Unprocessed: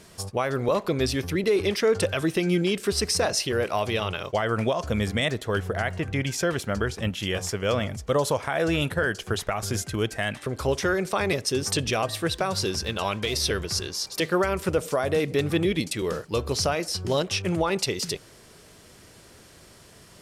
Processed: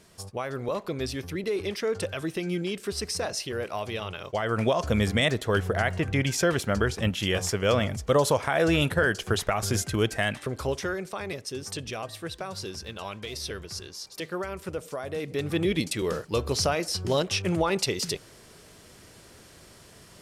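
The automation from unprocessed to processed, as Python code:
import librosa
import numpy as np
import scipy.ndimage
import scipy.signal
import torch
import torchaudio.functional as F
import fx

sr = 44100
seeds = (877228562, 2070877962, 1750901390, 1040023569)

y = fx.gain(x, sr, db=fx.line((4.16, -6.5), (4.75, 1.5), (10.22, 1.5), (11.17, -9.5), (15.12, -9.5), (15.74, -0.5)))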